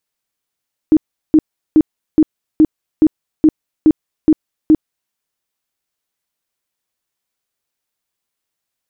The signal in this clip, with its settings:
tone bursts 311 Hz, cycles 15, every 0.42 s, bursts 10, −4.5 dBFS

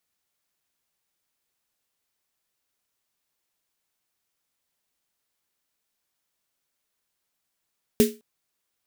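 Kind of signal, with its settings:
synth snare length 0.21 s, tones 230 Hz, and 420 Hz, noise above 1,800 Hz, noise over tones −9 dB, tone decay 0.26 s, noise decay 0.26 s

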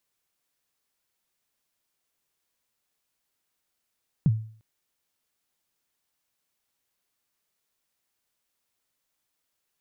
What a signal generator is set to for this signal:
synth kick length 0.35 s, from 180 Hz, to 110 Hz, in 39 ms, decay 0.48 s, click off, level −14 dB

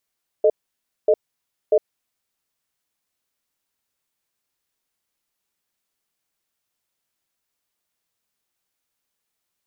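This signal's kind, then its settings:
tone pair in a cadence 436 Hz, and 616 Hz, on 0.06 s, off 0.58 s, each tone −14.5 dBFS 1.66 s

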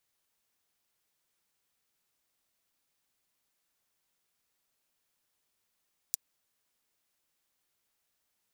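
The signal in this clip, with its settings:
closed synth hi-hat, high-pass 5,900 Hz, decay 0.02 s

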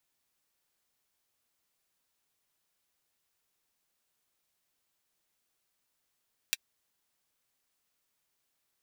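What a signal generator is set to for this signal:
closed synth hi-hat, high-pass 2,400 Hz, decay 0.04 s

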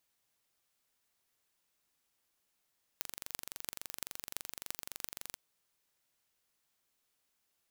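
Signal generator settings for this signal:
impulse train 23.6 per second, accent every 8, −8.5 dBFS 2.35 s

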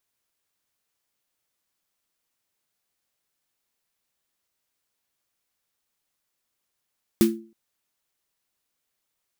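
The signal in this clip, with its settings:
synth snare length 0.32 s, tones 220 Hz, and 340 Hz, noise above 1,100 Hz, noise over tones −10 dB, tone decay 0.40 s, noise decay 0.21 s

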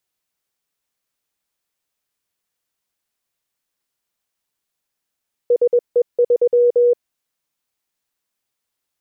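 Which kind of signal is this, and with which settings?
Morse code "SE3" 21 words per minute 483 Hz −10 dBFS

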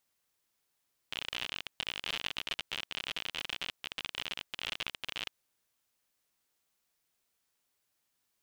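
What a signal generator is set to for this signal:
Geiger counter clicks 57 per second −20 dBFS 4.17 s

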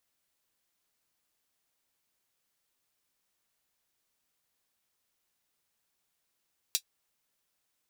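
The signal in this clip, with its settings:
closed synth hi-hat, high-pass 3,800 Hz, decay 0.08 s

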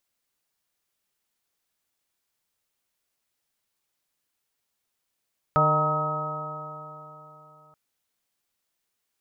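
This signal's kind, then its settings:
stiff-string partials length 2.18 s, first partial 151 Hz, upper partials −11/−7.5/0/−6/−4/−14.5/5 dB, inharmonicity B 0.0018, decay 3.49 s, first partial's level −23.5 dB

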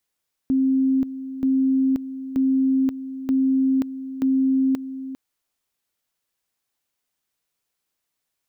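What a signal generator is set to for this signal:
tone at two levels in turn 265 Hz −16 dBFS, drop 13 dB, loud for 0.53 s, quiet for 0.40 s, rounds 5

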